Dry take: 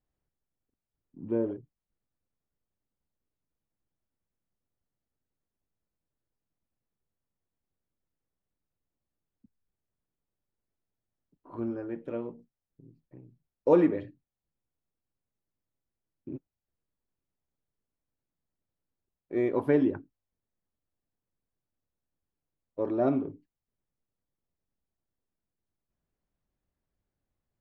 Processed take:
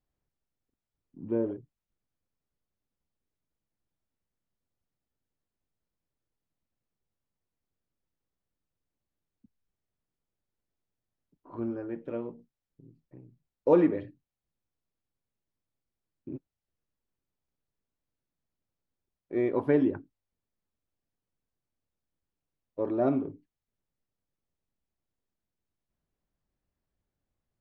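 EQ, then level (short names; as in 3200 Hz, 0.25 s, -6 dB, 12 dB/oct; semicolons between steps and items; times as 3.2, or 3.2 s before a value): air absorption 66 m; 0.0 dB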